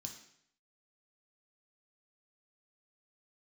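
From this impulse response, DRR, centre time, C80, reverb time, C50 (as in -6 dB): 1.5 dB, 24 ms, 10.0 dB, 0.70 s, 7.0 dB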